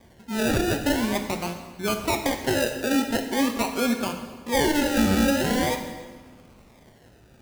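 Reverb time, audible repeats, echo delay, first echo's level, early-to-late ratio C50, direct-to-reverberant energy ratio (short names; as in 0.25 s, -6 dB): 1.4 s, none, none, none, 7.5 dB, 5.0 dB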